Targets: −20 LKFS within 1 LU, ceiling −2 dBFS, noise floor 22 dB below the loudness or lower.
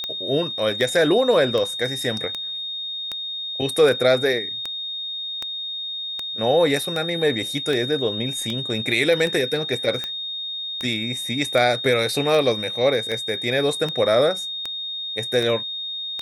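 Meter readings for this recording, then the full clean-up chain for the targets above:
number of clicks 22; interfering tone 3,700 Hz; level of the tone −27 dBFS; integrated loudness −22.0 LKFS; sample peak −5.0 dBFS; target loudness −20.0 LKFS
→ click removal
notch filter 3,700 Hz, Q 30
level +2 dB

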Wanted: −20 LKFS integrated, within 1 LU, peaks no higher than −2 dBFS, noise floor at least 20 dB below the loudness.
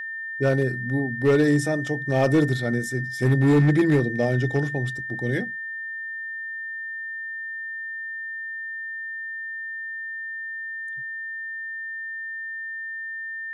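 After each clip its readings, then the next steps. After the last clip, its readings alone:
share of clipped samples 0.7%; peaks flattened at −13.0 dBFS; interfering tone 1,800 Hz; level of the tone −30 dBFS; integrated loudness −25.5 LKFS; sample peak −13.0 dBFS; target loudness −20.0 LKFS
→ clipped peaks rebuilt −13 dBFS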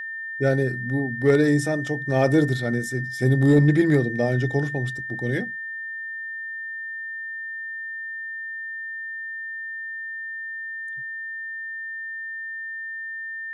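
share of clipped samples 0.0%; interfering tone 1,800 Hz; level of the tone −30 dBFS
→ notch filter 1,800 Hz, Q 30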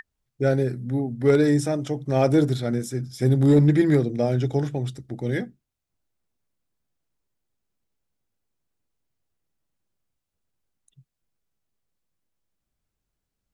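interfering tone none found; integrated loudness −22.5 LKFS; sample peak −5.5 dBFS; target loudness −20.0 LKFS
→ level +2.5 dB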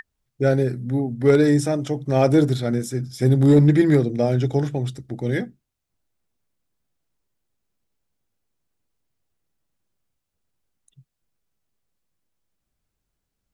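integrated loudness −20.0 LKFS; sample peak −3.0 dBFS; background noise floor −80 dBFS

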